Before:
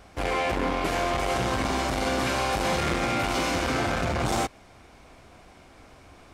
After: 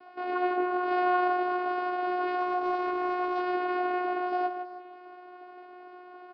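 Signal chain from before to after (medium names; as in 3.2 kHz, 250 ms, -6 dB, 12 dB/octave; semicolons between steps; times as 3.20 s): peaking EQ 960 Hz +11.5 dB 1 oct; band-stop 1 kHz, Q 11; peak limiter -21 dBFS, peak gain reduction 11.5 dB; chorus voices 6, 0.56 Hz, delay 17 ms, depth 3.6 ms; vocoder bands 8, saw 361 Hz; 0.87–1.28 s: doubling 36 ms -3 dB; feedback delay 158 ms, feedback 35%, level -8.5 dB; resampled via 11.025 kHz; 2.39–3.40 s: loudspeaker Doppler distortion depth 0.11 ms; trim +1.5 dB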